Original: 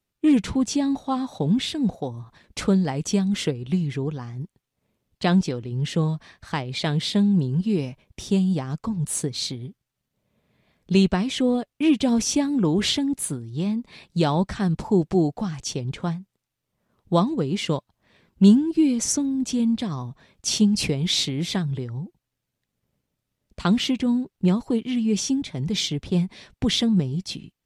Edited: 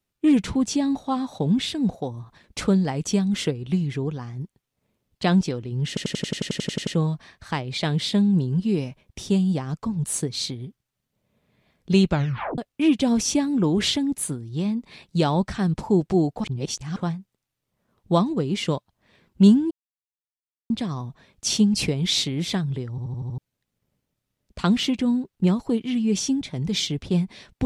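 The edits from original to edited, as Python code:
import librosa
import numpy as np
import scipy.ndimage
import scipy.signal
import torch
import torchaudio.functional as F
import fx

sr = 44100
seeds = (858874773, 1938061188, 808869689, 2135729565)

y = fx.edit(x, sr, fx.stutter(start_s=5.88, slice_s=0.09, count=12),
    fx.tape_stop(start_s=11.09, length_s=0.5),
    fx.reverse_span(start_s=15.45, length_s=0.52),
    fx.silence(start_s=18.72, length_s=0.99),
    fx.stutter_over(start_s=21.91, slice_s=0.08, count=6), tone=tone)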